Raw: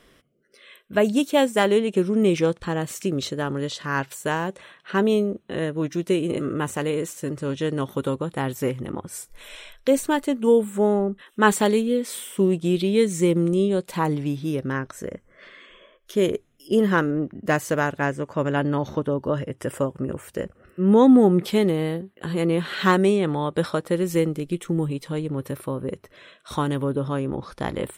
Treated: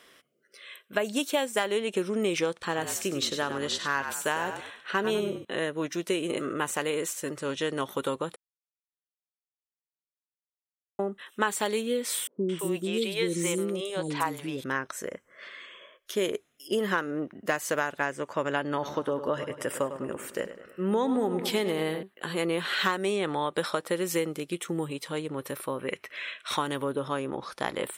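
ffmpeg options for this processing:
-filter_complex "[0:a]asettb=1/sr,asplit=3[a][b][c];[a]atrim=end=2.554[d];[b]atrim=start=2.55:end=5.45,asetpts=PTS-STARTPTS,afade=t=in:d=0.004:c=qsin,afade=t=out:st=2.896:d=0.004:c=qsin,asplit=5[e][f][g][h][i];[f]adelay=98,afreqshift=-48,volume=-9dB[j];[g]adelay=196,afreqshift=-96,volume=-19.2dB[k];[h]adelay=294,afreqshift=-144,volume=-29.3dB[l];[i]adelay=392,afreqshift=-192,volume=-39.5dB[m];[e][j][k][l][m]amix=inputs=5:normalize=0,atrim=end_sample=127890[n];[c]atrim=start=5.446[o];[d][n]acrossfade=d=0.004:c1=hsin:c2=qsin[p];[p][o]acrossfade=d=0.004:c1=qsin:c2=hsin,asettb=1/sr,asplit=3[q][r][s];[q]atrim=end=12.274[t];[r]atrim=start=12.27:end=14.64,asetpts=PTS-STARTPTS,afade=t=in:d=0.004:c=qsin,afade=t=out:st=2.366:d=0.004:c=qsin,acrossover=split=450|5500[u][v][w];[v]adelay=220[x];[w]adelay=320[y];[u][x][y]amix=inputs=3:normalize=0,atrim=end_sample=104517[z];[s]atrim=start=14.636[aa];[t][z]acrossfade=d=0.004:c1=hsin:c2=qsin[ab];[ab][aa]acrossfade=d=0.004:c1=qsin:c2=hsin,asettb=1/sr,asplit=3[ac][ad][ae];[ac]atrim=end=18.664[af];[ad]atrim=start=18.66:end=22.03,asetpts=PTS-STARTPTS,afade=t=in:d=0.004:c=qsin,afade=t=out:st=3.366:d=0.004:c=qsin,asplit=2[ag][ah];[ah]adelay=102,lowpass=f=4.5k:p=1,volume=-12dB,asplit=2[ai][aj];[aj]adelay=102,lowpass=f=4.5k:p=1,volume=0.54,asplit=2[ak][al];[al]adelay=102,lowpass=f=4.5k:p=1,volume=0.54,asplit=2[am][an];[an]adelay=102,lowpass=f=4.5k:p=1,volume=0.54,asplit=2[ao][ap];[ap]adelay=102,lowpass=f=4.5k:p=1,volume=0.54,asplit=2[aq][ar];[ar]adelay=102,lowpass=f=4.5k:p=1,volume=0.54[as];[ag][ai][ak][am][ao][aq][as]amix=inputs=7:normalize=0,atrim=end_sample=148617[at];[ae]atrim=start=22.026[au];[af][at]acrossfade=d=0.004:c1=hsin:c2=qsin[av];[av][au]acrossfade=d=0.004:c1=qsin:c2=hsin,asettb=1/sr,asplit=3[aw][ax][ay];[aw]atrim=end=25.794[az];[ax]atrim=start=25.79:end=26.57,asetpts=PTS-STARTPTS,afade=t=in:d=0.004:c=qsin,afade=t=out:st=0.776:d=0.004:c=qsin,equalizer=f=2.3k:t=o:w=1.1:g=13[ba];[ay]atrim=start=26.566[bb];[az][ba]acrossfade=d=0.004:c1=hsin:c2=qsin[bc];[bc][bb]acrossfade=d=0.004:c1=qsin:c2=hsin,asplit=3[bd][be][bf];[bd]atrim=end=8.36,asetpts=PTS-STARTPTS,afade=t=out:st=8.356:d=0.004:c=hsin[bg];[be]atrim=start=8.36:end=10.99,asetpts=PTS-STARTPTS,volume=0[bh];[bf]atrim=start=10.99,asetpts=PTS-STARTPTS,afade=t=in:d=0.004:c=hsin[bi];[bg][bh][bi]concat=n=3:v=0:a=1,highpass=f=830:p=1,acompressor=threshold=-26dB:ratio=6,volume=3dB"

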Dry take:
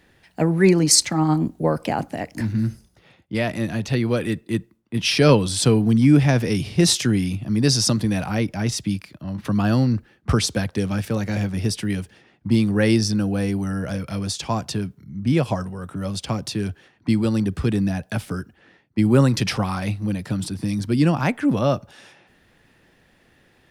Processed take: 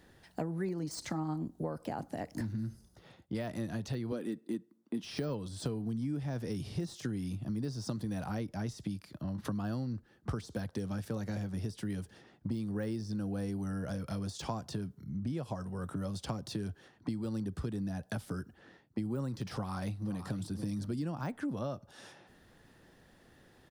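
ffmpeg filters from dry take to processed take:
-filter_complex "[0:a]asettb=1/sr,asplit=3[a][b][c];[a]atrim=end=4.124[d];[b]atrim=start=4.12:end=5.04,asetpts=PTS-STARTPTS,afade=t=in:d=0.004:c=qsin,afade=t=out:st=0.916:d=0.004:c=qsin,highpass=f=250:t=q:w=2.1[e];[c]atrim=start=5.036[f];[d][e]acrossfade=d=0.004:c1=hsin:c2=qsin[g];[g][f]acrossfade=d=0.004:c1=qsin:c2=hsin,asplit=2[h][i];[i]afade=t=in:st=19.54:d=0.01,afade=t=out:st=20.51:d=0.01,aecho=0:1:510|1020:0.199526|0.0199526[j];[h][j]amix=inputs=2:normalize=0,deesser=0.7,equalizer=f=2.4k:w=1.9:g=-8.5,acompressor=threshold=-32dB:ratio=6,volume=-2.5dB"

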